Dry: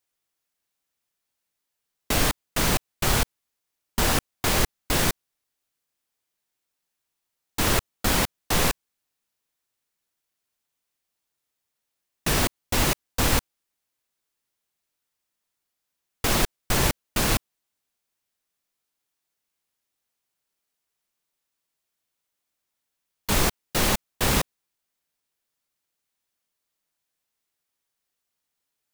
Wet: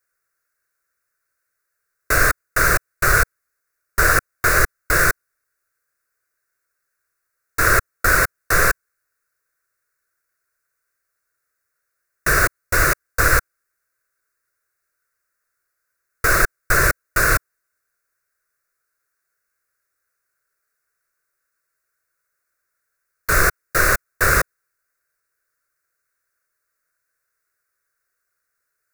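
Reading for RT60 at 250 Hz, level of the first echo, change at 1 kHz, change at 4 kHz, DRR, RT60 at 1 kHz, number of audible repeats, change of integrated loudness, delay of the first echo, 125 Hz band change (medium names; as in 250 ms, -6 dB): no reverb, no echo, +8.0 dB, -3.5 dB, no reverb, no reverb, no echo, +6.5 dB, no echo, +2.5 dB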